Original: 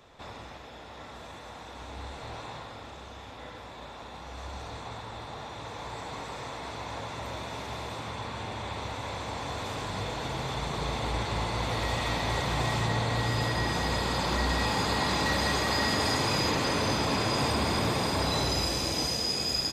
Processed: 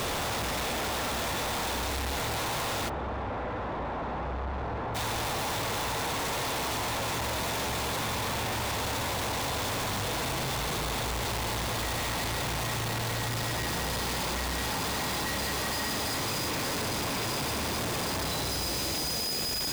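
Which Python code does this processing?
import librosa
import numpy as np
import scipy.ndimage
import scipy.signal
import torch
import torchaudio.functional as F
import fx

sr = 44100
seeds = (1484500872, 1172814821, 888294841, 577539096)

y = np.sign(x) * np.sqrt(np.mean(np.square(x)))
y = fx.lowpass(y, sr, hz=1300.0, slope=12, at=(2.88, 4.94), fade=0.02)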